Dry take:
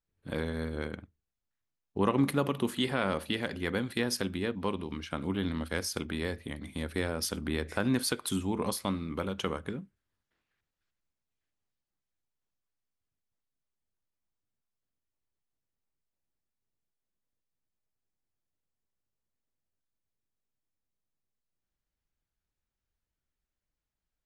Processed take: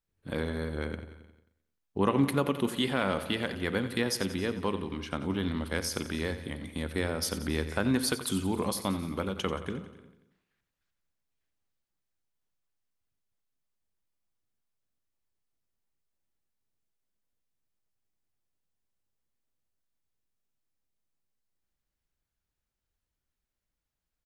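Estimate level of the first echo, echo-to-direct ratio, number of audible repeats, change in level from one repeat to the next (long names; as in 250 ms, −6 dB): −13.0 dB, −11.0 dB, 6, repeats not evenly spaced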